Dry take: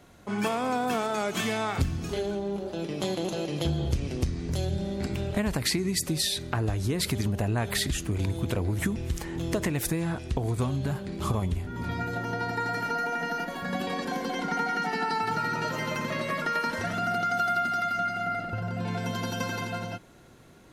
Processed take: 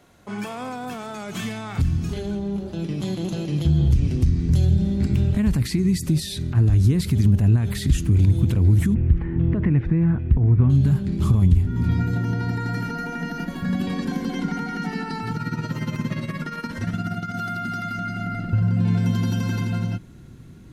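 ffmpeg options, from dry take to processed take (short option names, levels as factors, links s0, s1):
-filter_complex "[0:a]asettb=1/sr,asplit=3[s0][s1][s2];[s0]atrim=end=8.944[s3];[s1]atrim=start=8.94:end=10.7,asetpts=PTS-STARTPTS,afade=t=in:d=0.004:c=qsin,afade=t=out:st=1.756:d=0.004:c=qsin,lowpass=f=2200:w=0.5412,lowpass=f=2200:w=1.3066[s4];[s2]atrim=start=10.696[s5];[s3][s4]acrossfade=d=0.004:c1=hsin:c2=qsin[s6];[s6][s5]acrossfade=d=0.004:c1=qsin:c2=hsin,asplit=3[s7][s8][s9];[s7]afade=t=out:st=15.32:d=0.02[s10];[s8]tremolo=f=17:d=0.66,afade=t=in:st=15.32:d=0.02,afade=t=out:st=17.34:d=0.02[s11];[s9]afade=t=in:st=17.34:d=0.02[s12];[s10][s11][s12]amix=inputs=3:normalize=0,lowshelf=f=89:g=-7.5,alimiter=limit=0.0794:level=0:latency=1:release=48,asubboost=boost=10:cutoff=190"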